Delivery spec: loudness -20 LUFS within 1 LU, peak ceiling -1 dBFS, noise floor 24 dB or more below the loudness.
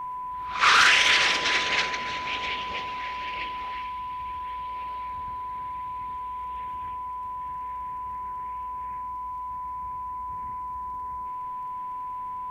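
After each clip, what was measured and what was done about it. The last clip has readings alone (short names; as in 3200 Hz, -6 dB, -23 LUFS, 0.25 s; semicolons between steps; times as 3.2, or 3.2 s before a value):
ticks 26/s; steady tone 1000 Hz; tone level -31 dBFS; loudness -27.0 LUFS; peak -8.0 dBFS; loudness target -20.0 LUFS
-> de-click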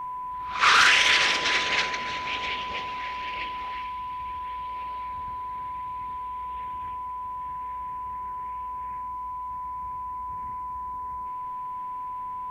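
ticks 0.080/s; steady tone 1000 Hz; tone level -31 dBFS
-> notch 1000 Hz, Q 30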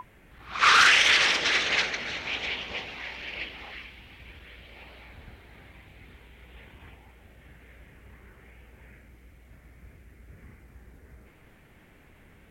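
steady tone none; loudness -22.5 LUFS; peak -7.5 dBFS; loudness target -20.0 LUFS
-> gain +2.5 dB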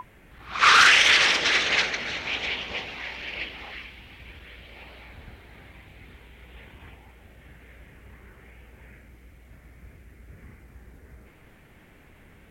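loudness -20.0 LUFS; peak -5.0 dBFS; noise floor -53 dBFS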